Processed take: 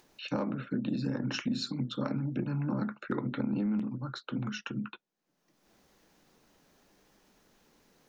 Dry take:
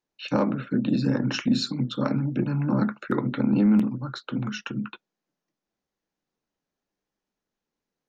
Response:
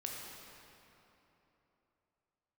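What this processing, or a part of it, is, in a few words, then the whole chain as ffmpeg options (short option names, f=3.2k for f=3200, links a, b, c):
upward and downward compression: -filter_complex "[0:a]acompressor=mode=upward:threshold=-39dB:ratio=2.5,acompressor=threshold=-23dB:ratio=5,asettb=1/sr,asplit=3[a][b][c];[a]atrim=end=3.004[d];[b]atrim=start=3:end=4.01,asetpts=PTS-STARTPTS,afade=t=in:d=0.004:c=qsin,afade=t=out:st=1.006:d=0.004:c=qsin,lowpass=6.3k[e];[c]atrim=start=4.006[f];[d][e]acrossfade=d=0.004:c1=hsin:c2=qsin[g];[g][f]acrossfade=d=0.004:c1=qsin:c2=hsin,volume=-5dB"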